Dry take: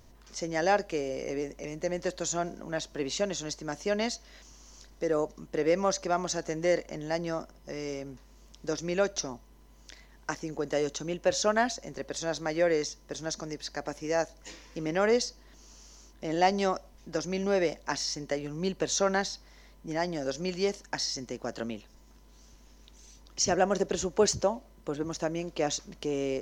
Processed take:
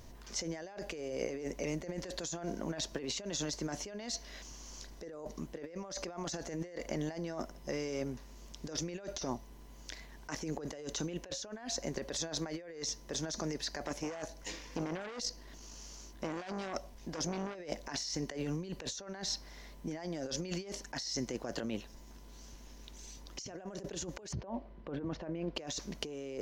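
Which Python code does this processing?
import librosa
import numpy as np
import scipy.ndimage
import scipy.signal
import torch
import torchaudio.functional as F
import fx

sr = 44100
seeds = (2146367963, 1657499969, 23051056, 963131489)

y = fx.transformer_sat(x, sr, knee_hz=2400.0, at=(13.87, 17.55))
y = fx.air_absorb(y, sr, metres=380.0, at=(24.31, 25.55), fade=0.02)
y = fx.notch(y, sr, hz=1300.0, q=17.0)
y = fx.over_compress(y, sr, threshold_db=-38.0, ratio=-1.0)
y = y * librosa.db_to_amplitude(-2.5)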